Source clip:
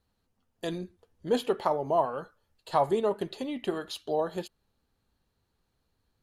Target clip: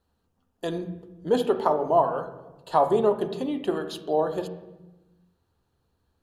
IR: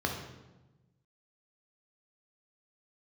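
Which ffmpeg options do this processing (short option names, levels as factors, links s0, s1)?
-filter_complex "[0:a]asplit=2[s0][s1];[1:a]atrim=start_sample=2205,lowpass=2700[s2];[s1][s2]afir=irnorm=-1:irlink=0,volume=0.335[s3];[s0][s3]amix=inputs=2:normalize=0"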